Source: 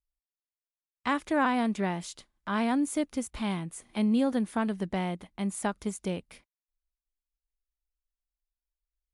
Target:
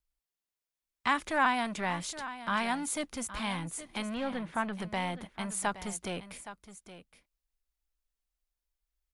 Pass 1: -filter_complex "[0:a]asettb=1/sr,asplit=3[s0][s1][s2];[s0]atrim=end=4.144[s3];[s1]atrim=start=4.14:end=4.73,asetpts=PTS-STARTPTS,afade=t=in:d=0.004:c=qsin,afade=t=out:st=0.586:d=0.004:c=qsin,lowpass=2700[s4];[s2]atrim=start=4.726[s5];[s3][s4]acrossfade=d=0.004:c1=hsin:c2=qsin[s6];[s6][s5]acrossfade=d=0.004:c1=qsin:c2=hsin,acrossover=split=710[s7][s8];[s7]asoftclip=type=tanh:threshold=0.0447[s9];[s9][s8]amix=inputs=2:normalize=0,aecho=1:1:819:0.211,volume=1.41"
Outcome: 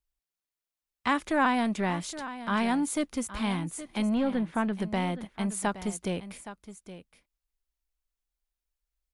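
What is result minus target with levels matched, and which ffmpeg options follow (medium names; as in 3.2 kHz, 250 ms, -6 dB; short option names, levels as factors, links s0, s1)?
saturation: distortion -8 dB
-filter_complex "[0:a]asettb=1/sr,asplit=3[s0][s1][s2];[s0]atrim=end=4.144[s3];[s1]atrim=start=4.14:end=4.73,asetpts=PTS-STARTPTS,afade=t=in:d=0.004:c=qsin,afade=t=out:st=0.586:d=0.004:c=qsin,lowpass=2700[s4];[s2]atrim=start=4.726[s5];[s3][s4]acrossfade=d=0.004:c1=hsin:c2=qsin[s6];[s6][s5]acrossfade=d=0.004:c1=qsin:c2=hsin,acrossover=split=710[s7][s8];[s7]asoftclip=type=tanh:threshold=0.0112[s9];[s9][s8]amix=inputs=2:normalize=0,aecho=1:1:819:0.211,volume=1.41"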